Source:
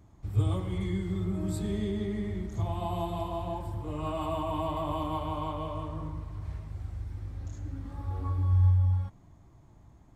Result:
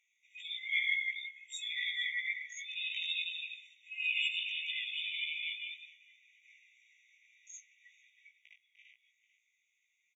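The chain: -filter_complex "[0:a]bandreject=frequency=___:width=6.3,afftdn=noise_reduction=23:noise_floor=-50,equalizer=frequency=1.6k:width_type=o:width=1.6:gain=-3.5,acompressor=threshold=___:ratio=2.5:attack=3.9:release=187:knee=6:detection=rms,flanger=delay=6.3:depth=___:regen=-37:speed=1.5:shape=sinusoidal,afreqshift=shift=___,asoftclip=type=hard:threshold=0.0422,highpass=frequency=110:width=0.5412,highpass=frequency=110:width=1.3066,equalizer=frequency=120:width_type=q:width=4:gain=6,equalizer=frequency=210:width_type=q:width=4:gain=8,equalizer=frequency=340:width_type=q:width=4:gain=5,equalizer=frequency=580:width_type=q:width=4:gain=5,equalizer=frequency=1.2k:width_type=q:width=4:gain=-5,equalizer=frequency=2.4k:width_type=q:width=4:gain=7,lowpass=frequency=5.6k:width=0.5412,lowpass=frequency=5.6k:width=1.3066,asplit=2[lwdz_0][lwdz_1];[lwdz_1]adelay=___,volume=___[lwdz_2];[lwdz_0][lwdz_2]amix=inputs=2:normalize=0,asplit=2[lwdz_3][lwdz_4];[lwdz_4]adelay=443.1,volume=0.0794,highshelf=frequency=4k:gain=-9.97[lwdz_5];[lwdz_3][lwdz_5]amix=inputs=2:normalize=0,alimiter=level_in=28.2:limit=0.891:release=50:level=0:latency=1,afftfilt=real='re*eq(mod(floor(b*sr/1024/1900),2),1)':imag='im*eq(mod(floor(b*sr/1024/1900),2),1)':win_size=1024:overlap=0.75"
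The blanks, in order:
3.1k, 0.0398, 6.2, 21, 18, 0.708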